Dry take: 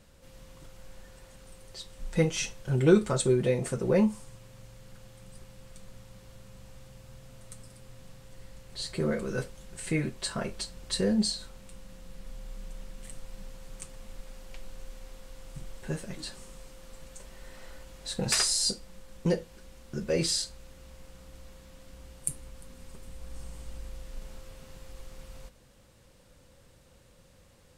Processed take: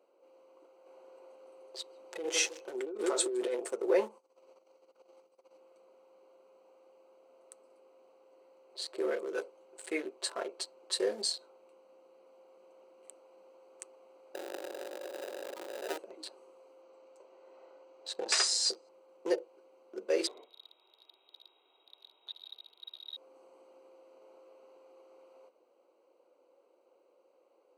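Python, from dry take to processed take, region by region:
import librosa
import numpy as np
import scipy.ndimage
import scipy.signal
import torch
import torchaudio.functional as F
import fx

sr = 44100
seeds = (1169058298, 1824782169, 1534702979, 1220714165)

y = fx.chain(x, sr, fx.echo_feedback(ms=156, feedback_pct=33, wet_db=-15),
    fx.over_compress(threshold_db=-29.0, ratio=-1.0), at=(0.86, 3.55))
y = fx.chain(y, sr, fx.peak_eq(hz=5400.0, db=7.0, octaves=0.89),
    fx.notch(hz=1600.0, q=27.0),
    fx.over_compress(threshold_db=-51.0, ratio=-0.5), at=(4.18, 5.58))
y = fx.chain(y, sr, fx.notch_comb(f0_hz=940.0),
    fx.sample_hold(seeds[0], rate_hz=1100.0, jitter_pct=0),
    fx.env_flatten(amount_pct=70), at=(14.34, 15.98))
y = fx.chain(y, sr, fx.lowpass(hz=7900.0, slope=24),
    fx.echo_single(ms=333, db=-22.0), at=(16.82, 18.89))
y = fx.chain(y, sr, fx.echo_feedback(ms=83, feedback_pct=51, wet_db=-18.0),
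    fx.freq_invert(carrier_hz=3800), at=(20.27, 23.17))
y = fx.wiener(y, sr, points=25)
y = scipy.signal.sosfilt(scipy.signal.ellip(4, 1.0, 70, 350.0, 'highpass', fs=sr, output='sos'), y)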